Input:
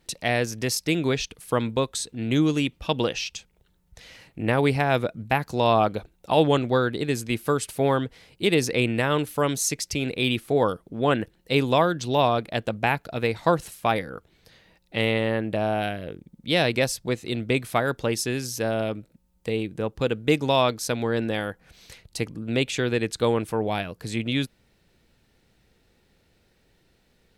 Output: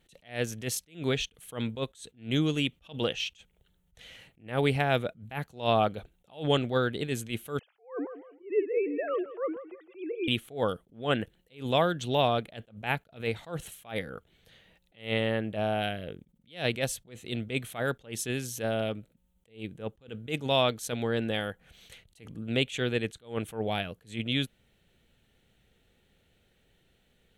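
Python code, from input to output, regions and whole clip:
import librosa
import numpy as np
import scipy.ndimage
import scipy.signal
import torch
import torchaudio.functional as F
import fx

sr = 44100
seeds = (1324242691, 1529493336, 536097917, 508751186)

y = fx.chain(x, sr, fx.sine_speech(),
    fx.lowpass(hz=1200.0, slope=12),
    fx.echo_feedback(ms=164, feedback_pct=32, wet_db=-14.5), at=(7.59, 10.28))
y = fx.graphic_eq_31(y, sr, hz=(315, 1000, 3150, 5000), db=(-4, -6, 7, -11))
y = fx.attack_slew(y, sr, db_per_s=190.0)
y = y * librosa.db_to_amplitude(-3.5)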